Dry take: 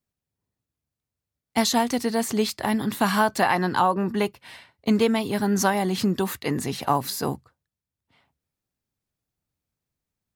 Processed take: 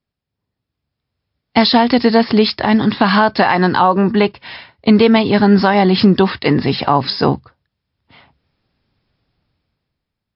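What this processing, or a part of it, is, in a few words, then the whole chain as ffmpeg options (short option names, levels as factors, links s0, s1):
low-bitrate web radio: -af "dynaudnorm=f=110:g=17:m=5.31,alimiter=limit=0.447:level=0:latency=1:release=99,volume=2" -ar 12000 -c:a libmp3lame -b:a 48k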